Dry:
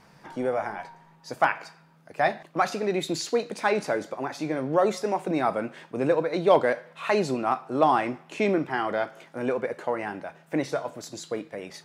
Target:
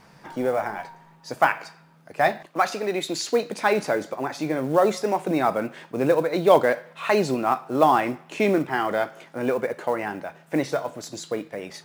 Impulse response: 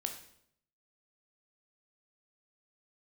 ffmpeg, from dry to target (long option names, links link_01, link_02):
-filter_complex "[0:a]asettb=1/sr,asplit=3[link_01][link_02][link_03];[link_01]atrim=end=2.464[link_04];[link_02]atrim=start=2.46:end=3.29,asetpts=PTS-STARTPTS,afade=type=in:duration=0.004:curve=qsin,afade=type=out:start_time=0.826:duration=0.004:curve=qsin,highpass=frequency=360:poles=1[link_05];[link_03]atrim=start=3.286[link_06];[link_04][link_05]acrossfade=duration=0.004:curve1=hsin:curve2=qsin[link_07];[link_07][link_06]acrossfade=duration=0.004:curve1=qsin:curve2=hsin,acrusher=bits=7:mode=log:mix=0:aa=0.000001,volume=3dB"